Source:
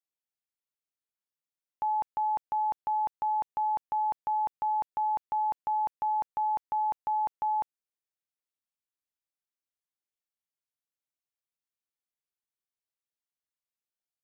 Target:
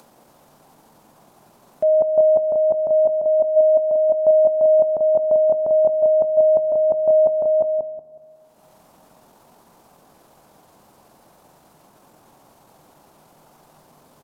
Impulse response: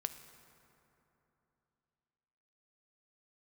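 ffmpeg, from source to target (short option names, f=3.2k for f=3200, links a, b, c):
-filter_complex "[0:a]firequalizer=gain_entry='entry(110,0);entry(210,8);entry(320,8);entry(620,1);entry(1300,2);entry(2600,-10)':delay=0.05:min_phase=1,acompressor=mode=upward:threshold=-41dB:ratio=2.5,alimiter=level_in=6dB:limit=-24dB:level=0:latency=1:release=338,volume=-6dB,equalizer=f=960:t=o:w=1.3:g=8.5,asetrate=32097,aresample=44100,atempo=1.37395,asplit=2[a][b];[b]adelay=184,lowpass=f=950:p=1,volume=-3.5dB,asplit=2[c][d];[d]adelay=184,lowpass=f=950:p=1,volume=0.35,asplit=2[e][f];[f]adelay=184,lowpass=f=950:p=1,volume=0.35,asplit=2[g][h];[h]adelay=184,lowpass=f=950:p=1,volume=0.35,asplit=2[i][j];[j]adelay=184,lowpass=f=950:p=1,volume=0.35[k];[a][c][e][g][i][k]amix=inputs=6:normalize=0,asplit=2[l][m];[1:a]atrim=start_sample=2205[n];[m][n]afir=irnorm=-1:irlink=0,volume=-1dB[o];[l][o]amix=inputs=2:normalize=0,volume=5.5dB"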